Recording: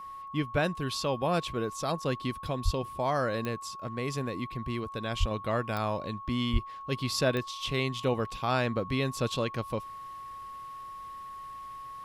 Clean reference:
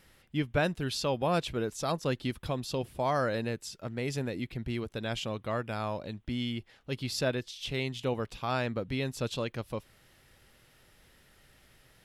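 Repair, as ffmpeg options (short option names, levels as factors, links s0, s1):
-filter_complex "[0:a]adeclick=t=4,bandreject=f=1100:w=30,asplit=3[s0][s1][s2];[s0]afade=t=out:st=2.64:d=0.02[s3];[s1]highpass=f=140:w=0.5412,highpass=f=140:w=1.3066,afade=t=in:st=2.64:d=0.02,afade=t=out:st=2.76:d=0.02[s4];[s2]afade=t=in:st=2.76:d=0.02[s5];[s3][s4][s5]amix=inputs=3:normalize=0,asplit=3[s6][s7][s8];[s6]afade=t=out:st=5.19:d=0.02[s9];[s7]highpass=f=140:w=0.5412,highpass=f=140:w=1.3066,afade=t=in:st=5.19:d=0.02,afade=t=out:st=5.31:d=0.02[s10];[s8]afade=t=in:st=5.31:d=0.02[s11];[s9][s10][s11]amix=inputs=3:normalize=0,asplit=3[s12][s13][s14];[s12]afade=t=out:st=6.52:d=0.02[s15];[s13]highpass=f=140:w=0.5412,highpass=f=140:w=1.3066,afade=t=in:st=6.52:d=0.02,afade=t=out:st=6.64:d=0.02[s16];[s14]afade=t=in:st=6.64:d=0.02[s17];[s15][s16][s17]amix=inputs=3:normalize=0,asetnsamples=n=441:p=0,asendcmd='5.31 volume volume -3dB',volume=1"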